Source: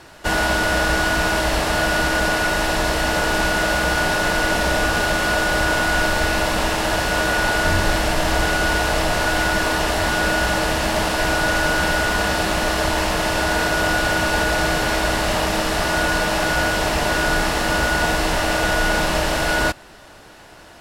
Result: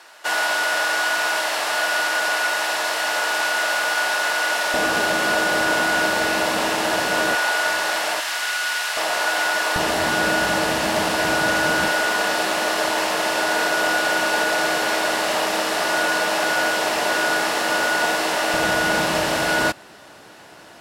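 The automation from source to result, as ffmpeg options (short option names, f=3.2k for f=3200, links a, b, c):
-af "asetnsamples=n=441:p=0,asendcmd='4.74 highpass f 220;7.35 highpass f 650;8.2 highpass f 1400;8.97 highpass f 610;9.76 highpass f 150;11.88 highpass f 350;18.54 highpass f 140',highpass=730"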